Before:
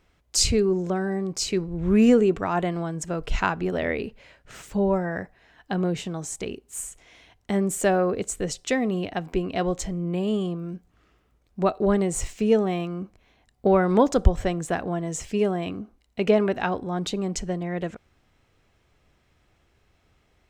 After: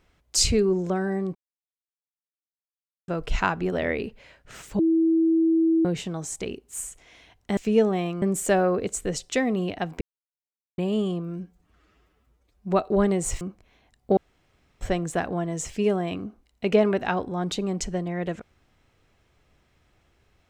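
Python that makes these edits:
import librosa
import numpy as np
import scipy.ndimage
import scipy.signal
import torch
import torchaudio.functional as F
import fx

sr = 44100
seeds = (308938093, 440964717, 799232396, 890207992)

y = fx.edit(x, sr, fx.silence(start_s=1.35, length_s=1.73),
    fx.bleep(start_s=4.79, length_s=1.06, hz=326.0, db=-17.0),
    fx.silence(start_s=9.36, length_s=0.77),
    fx.stretch_span(start_s=10.72, length_s=0.9, factor=1.5),
    fx.move(start_s=12.31, length_s=0.65, to_s=7.57),
    fx.room_tone_fill(start_s=13.72, length_s=0.64), tone=tone)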